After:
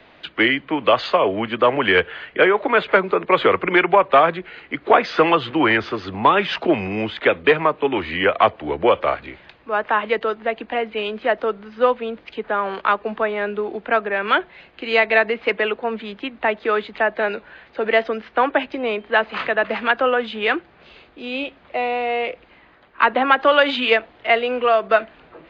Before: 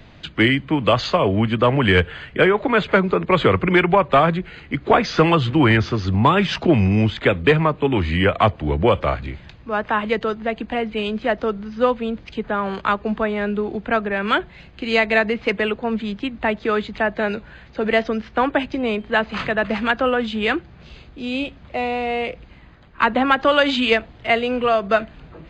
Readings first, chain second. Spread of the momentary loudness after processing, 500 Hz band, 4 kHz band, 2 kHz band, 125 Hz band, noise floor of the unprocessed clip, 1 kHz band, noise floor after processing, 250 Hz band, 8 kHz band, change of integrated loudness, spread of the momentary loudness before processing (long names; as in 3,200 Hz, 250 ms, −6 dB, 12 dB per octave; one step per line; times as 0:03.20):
11 LU, +1.0 dB, −0.5 dB, +1.5 dB, −14.0 dB, −45 dBFS, +2.0 dB, −51 dBFS, −5.0 dB, can't be measured, 0.0 dB, 10 LU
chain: three-way crossover with the lows and the highs turned down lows −19 dB, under 300 Hz, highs −18 dB, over 4,100 Hz
level +2 dB